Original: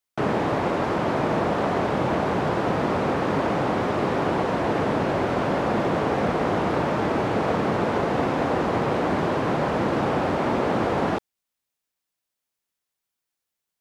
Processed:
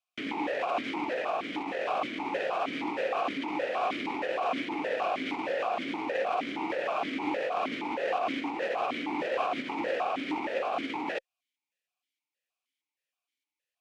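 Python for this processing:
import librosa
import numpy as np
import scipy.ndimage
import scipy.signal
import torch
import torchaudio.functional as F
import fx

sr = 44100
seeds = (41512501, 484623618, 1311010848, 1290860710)

y = fx.tilt_eq(x, sr, slope=4.0)
y = fx.over_compress(y, sr, threshold_db=-27.0, ratio=-0.5)
y = fx.cheby_harmonics(y, sr, harmonics=(4,), levels_db=(-17,), full_scale_db=-14.0)
y = fx.vowel_held(y, sr, hz=6.4)
y = y * 10.0 ** (6.5 / 20.0)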